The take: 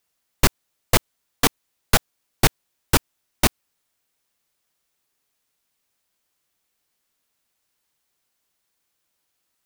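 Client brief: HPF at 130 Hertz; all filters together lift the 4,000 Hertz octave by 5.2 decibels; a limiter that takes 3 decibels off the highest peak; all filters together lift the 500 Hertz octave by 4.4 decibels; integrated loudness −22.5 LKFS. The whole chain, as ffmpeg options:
ffmpeg -i in.wav -af "highpass=130,equalizer=frequency=500:width_type=o:gain=5.5,equalizer=frequency=4000:width_type=o:gain=6.5,volume=-1dB,alimiter=limit=-4dB:level=0:latency=1" out.wav

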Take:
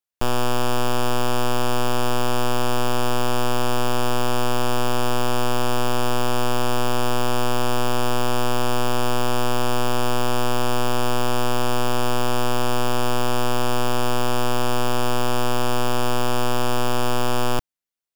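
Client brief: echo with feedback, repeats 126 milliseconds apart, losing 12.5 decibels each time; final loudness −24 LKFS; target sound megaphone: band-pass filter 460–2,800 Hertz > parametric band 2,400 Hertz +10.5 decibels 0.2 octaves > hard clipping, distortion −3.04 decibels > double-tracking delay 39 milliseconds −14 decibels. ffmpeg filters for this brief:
ffmpeg -i in.wav -filter_complex "[0:a]highpass=460,lowpass=2800,equalizer=frequency=2400:width_type=o:width=0.2:gain=10.5,aecho=1:1:126|252|378:0.237|0.0569|0.0137,asoftclip=type=hard:threshold=-26dB,asplit=2[link_01][link_02];[link_02]adelay=39,volume=-14dB[link_03];[link_01][link_03]amix=inputs=2:normalize=0,volume=8.5dB" out.wav

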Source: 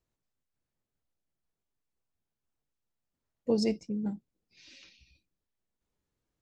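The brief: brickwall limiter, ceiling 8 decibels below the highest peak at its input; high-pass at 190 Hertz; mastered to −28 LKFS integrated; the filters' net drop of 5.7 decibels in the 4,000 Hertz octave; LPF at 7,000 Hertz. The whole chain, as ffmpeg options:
ffmpeg -i in.wav -af "highpass=190,lowpass=7000,equalizer=frequency=4000:width_type=o:gain=-7.5,volume=9dB,alimiter=limit=-15.5dB:level=0:latency=1" out.wav

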